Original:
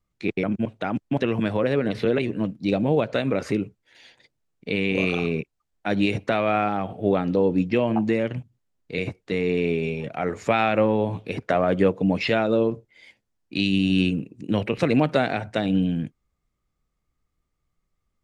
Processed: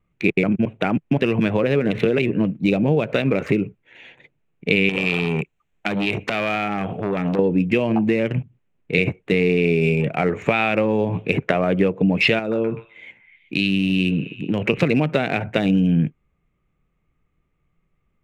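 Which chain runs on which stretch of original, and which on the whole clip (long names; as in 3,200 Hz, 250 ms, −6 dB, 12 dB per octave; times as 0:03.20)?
0:04.89–0:07.39: high-shelf EQ 2,800 Hz +9 dB + downward compressor, threshold −24 dBFS + saturating transformer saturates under 1,500 Hz
0:12.39–0:14.68: downward compressor 2 to 1, threshold −31 dBFS + echo through a band-pass that steps 126 ms, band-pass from 1,200 Hz, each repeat 0.7 octaves, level −7 dB
whole clip: adaptive Wiener filter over 9 samples; downward compressor, threshold −24 dBFS; graphic EQ with 15 bands 160 Hz +7 dB, 400 Hz +4 dB, 2,500 Hz +9 dB; level +6 dB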